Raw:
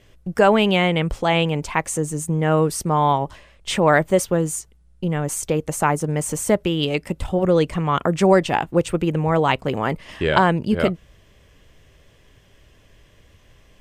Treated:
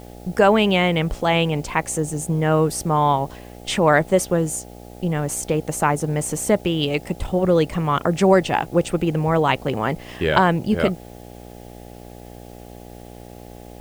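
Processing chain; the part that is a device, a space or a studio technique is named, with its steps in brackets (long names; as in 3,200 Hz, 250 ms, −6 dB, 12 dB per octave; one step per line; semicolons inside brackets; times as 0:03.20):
video cassette with head-switching buzz (hum with harmonics 60 Hz, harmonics 14, −40 dBFS −2 dB per octave; white noise bed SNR 32 dB)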